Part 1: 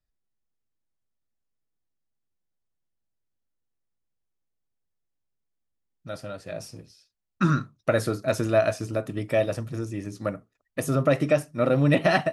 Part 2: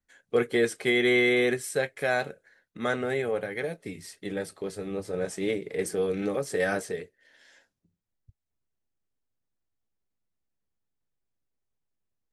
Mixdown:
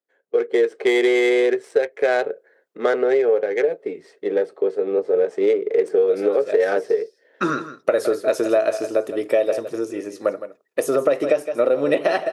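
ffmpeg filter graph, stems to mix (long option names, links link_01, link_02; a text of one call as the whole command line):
ffmpeg -i stem1.wav -i stem2.wav -filter_complex "[0:a]volume=-7dB,asplit=2[link_01][link_02];[link_02]volume=-13.5dB[link_03];[1:a]highshelf=frequency=4700:gain=9,adynamicsmooth=sensitivity=1.5:basefreq=1400,volume=-4dB,asplit=2[link_04][link_05];[link_05]apad=whole_len=543641[link_06];[link_01][link_06]sidechaincompress=threshold=-32dB:ratio=8:attack=16:release=194[link_07];[link_03]aecho=0:1:163:1[link_08];[link_07][link_04][link_08]amix=inputs=3:normalize=0,dynaudnorm=framelen=130:gausssize=9:maxgain=11dB,highpass=frequency=430:width_type=q:width=3.4,acompressor=threshold=-14dB:ratio=6" out.wav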